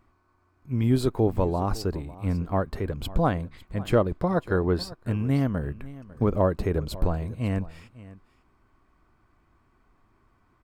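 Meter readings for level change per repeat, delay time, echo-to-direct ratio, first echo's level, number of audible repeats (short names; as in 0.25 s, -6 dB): no steady repeat, 0.55 s, -18.5 dB, -18.5 dB, 1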